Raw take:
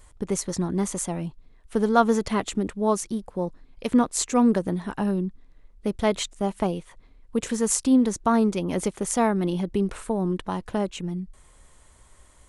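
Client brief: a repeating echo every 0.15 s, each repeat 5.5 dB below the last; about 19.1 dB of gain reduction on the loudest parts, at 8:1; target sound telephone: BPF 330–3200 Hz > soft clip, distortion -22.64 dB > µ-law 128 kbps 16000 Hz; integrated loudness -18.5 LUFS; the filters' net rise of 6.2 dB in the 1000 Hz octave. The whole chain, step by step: bell 1000 Hz +8 dB; compressor 8:1, threshold -28 dBFS; BPF 330–3200 Hz; feedback echo 0.15 s, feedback 53%, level -5.5 dB; soft clip -19.5 dBFS; gain +18 dB; µ-law 128 kbps 16000 Hz

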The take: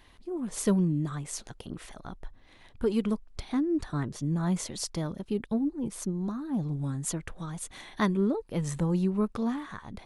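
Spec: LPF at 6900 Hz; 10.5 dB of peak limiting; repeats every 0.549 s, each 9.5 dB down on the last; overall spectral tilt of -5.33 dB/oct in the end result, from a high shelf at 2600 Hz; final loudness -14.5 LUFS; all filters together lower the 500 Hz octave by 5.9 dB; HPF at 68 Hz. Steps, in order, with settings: HPF 68 Hz; LPF 6900 Hz; bell 500 Hz -8.5 dB; high shelf 2600 Hz +5.5 dB; limiter -25.5 dBFS; feedback echo 0.549 s, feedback 33%, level -9.5 dB; gain +20 dB

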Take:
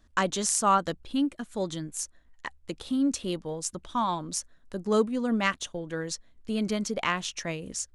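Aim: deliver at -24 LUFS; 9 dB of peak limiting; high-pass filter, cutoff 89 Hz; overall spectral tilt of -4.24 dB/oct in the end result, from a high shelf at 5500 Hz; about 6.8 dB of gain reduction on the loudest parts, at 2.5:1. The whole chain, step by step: HPF 89 Hz; high shelf 5500 Hz -7.5 dB; compressor 2.5:1, threshold -28 dBFS; gain +11 dB; limiter -12.5 dBFS

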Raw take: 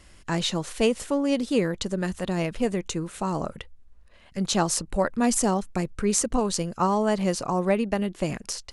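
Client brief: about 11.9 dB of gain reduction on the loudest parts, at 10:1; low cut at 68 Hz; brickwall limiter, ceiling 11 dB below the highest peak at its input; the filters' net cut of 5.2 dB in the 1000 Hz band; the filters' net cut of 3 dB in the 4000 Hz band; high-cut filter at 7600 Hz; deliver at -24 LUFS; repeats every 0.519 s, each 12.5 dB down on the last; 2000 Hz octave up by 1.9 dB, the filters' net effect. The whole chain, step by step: HPF 68 Hz; LPF 7600 Hz; bell 1000 Hz -8 dB; bell 2000 Hz +6 dB; bell 4000 Hz -5 dB; compressor 10:1, threshold -31 dBFS; limiter -29 dBFS; feedback echo 0.519 s, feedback 24%, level -12.5 dB; gain +14.5 dB

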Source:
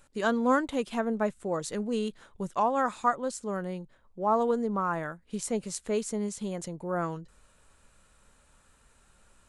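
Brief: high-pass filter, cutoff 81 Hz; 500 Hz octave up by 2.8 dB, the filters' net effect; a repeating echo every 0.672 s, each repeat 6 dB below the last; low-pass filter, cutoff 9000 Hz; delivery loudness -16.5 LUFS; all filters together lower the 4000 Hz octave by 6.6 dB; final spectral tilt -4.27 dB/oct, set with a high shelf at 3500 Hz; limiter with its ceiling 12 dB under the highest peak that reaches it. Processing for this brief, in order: HPF 81 Hz; LPF 9000 Hz; bell 500 Hz +3.5 dB; high shelf 3500 Hz -5.5 dB; bell 4000 Hz -5 dB; limiter -23.5 dBFS; feedback echo 0.672 s, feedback 50%, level -6 dB; gain +16 dB

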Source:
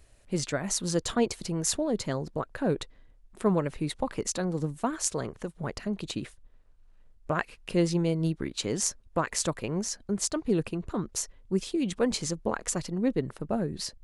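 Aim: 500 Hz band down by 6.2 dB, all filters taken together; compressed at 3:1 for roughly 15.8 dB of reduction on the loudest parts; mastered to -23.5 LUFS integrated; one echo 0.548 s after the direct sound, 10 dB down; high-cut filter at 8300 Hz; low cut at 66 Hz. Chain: HPF 66 Hz; LPF 8300 Hz; bell 500 Hz -8 dB; compressor 3:1, threshold -46 dBFS; echo 0.548 s -10 dB; gain +22 dB

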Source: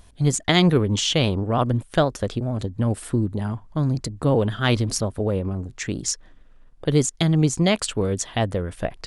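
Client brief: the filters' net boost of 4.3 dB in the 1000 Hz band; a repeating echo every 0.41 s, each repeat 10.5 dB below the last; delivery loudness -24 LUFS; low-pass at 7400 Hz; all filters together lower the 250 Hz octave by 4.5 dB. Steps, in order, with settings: LPF 7400 Hz; bell 250 Hz -7.5 dB; bell 1000 Hz +6.5 dB; feedback echo 0.41 s, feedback 30%, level -10.5 dB; gain -0.5 dB

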